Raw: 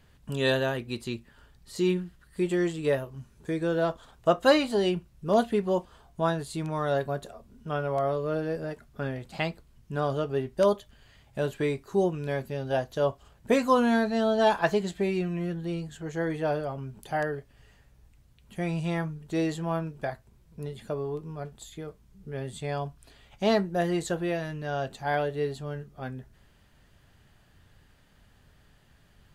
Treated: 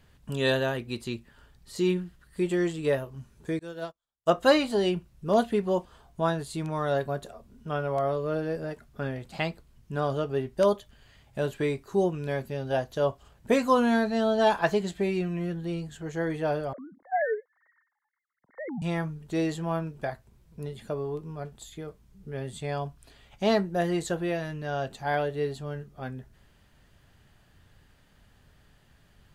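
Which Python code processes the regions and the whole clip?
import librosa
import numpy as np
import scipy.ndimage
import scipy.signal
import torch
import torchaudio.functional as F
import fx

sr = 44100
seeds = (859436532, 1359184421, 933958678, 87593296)

y = fx.chain(x, sr, fx.high_shelf(hz=2800.0, db=10.5),
    fx.upward_expand(threshold_db=-45.0, expansion=2.5), at=(3.59, 4.3))
y = fx.chain(y, sr, fx.sine_speech(),
    fx.brickwall_lowpass(high_hz=2200.0), at=(16.73, 18.82))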